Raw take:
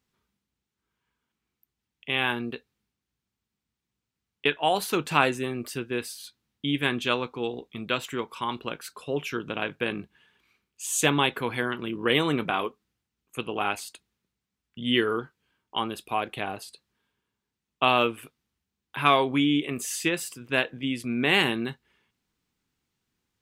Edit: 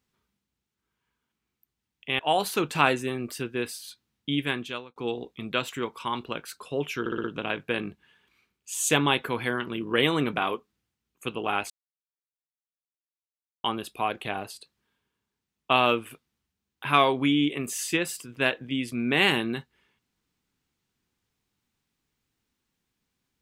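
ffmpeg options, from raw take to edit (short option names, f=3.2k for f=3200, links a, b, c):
-filter_complex "[0:a]asplit=9[a][b][c][d][e][f][g][h][i];[a]atrim=end=2.192[j];[b]atrim=start=4.548:end=7.32,asetpts=PTS-STARTPTS,afade=t=out:st=2.142:d=0.63[k];[c]atrim=start=7.32:end=9.422,asetpts=PTS-STARTPTS,afade=t=in:d=0.004:c=hsin[l];[d]atrim=start=9.358:end=9.422[m];[e]atrim=start=9.358:end=9.422[n];[f]atrim=start=9.358:end=9.422[o];[g]atrim=start=9.358:end=13.82,asetpts=PTS-STARTPTS,afade=t=out:st=4.458:d=0.004:c=hsin[p];[h]atrim=start=13.82:end=15.76,asetpts=PTS-STARTPTS,volume=0[q];[i]atrim=start=15.76,asetpts=PTS-STARTPTS,afade=t=in:d=0.004:c=hsin[r];[k][l]concat=n=2:v=0:a=1[s];[j][s]acrossfade=d=0.004:c1=hsin:c2=hsin[t];[t][m]acrossfade=d=0.004:c1=hsin:c2=hsin[u];[u][n]acrossfade=d=0.004:c1=hsin:c2=hsin[v];[v][o]acrossfade=d=0.004:c1=hsin:c2=hsin[w];[p][q][r]concat=n=3:v=0:a=1[x];[w][x]acrossfade=d=0.004:c1=hsin:c2=hsin"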